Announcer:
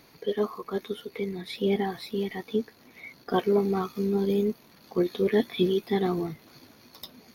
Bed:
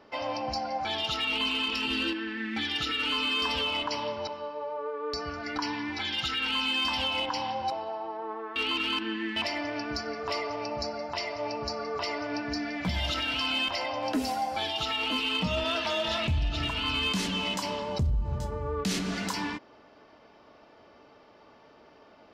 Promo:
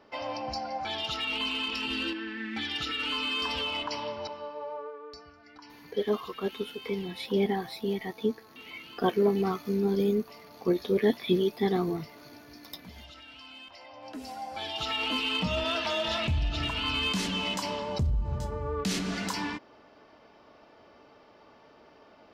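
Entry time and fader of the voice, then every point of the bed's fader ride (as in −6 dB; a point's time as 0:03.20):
5.70 s, −1.0 dB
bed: 0:04.75 −2.5 dB
0:05.35 −19 dB
0:13.72 −19 dB
0:14.93 −0.5 dB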